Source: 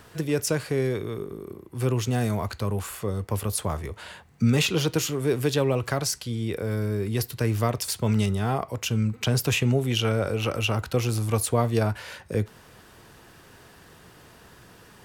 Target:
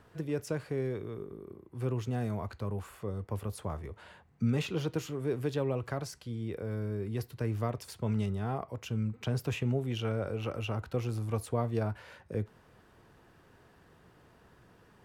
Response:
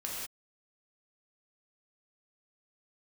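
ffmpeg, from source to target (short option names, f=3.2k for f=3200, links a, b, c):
-af "highshelf=f=2.7k:g=-12,volume=-8dB"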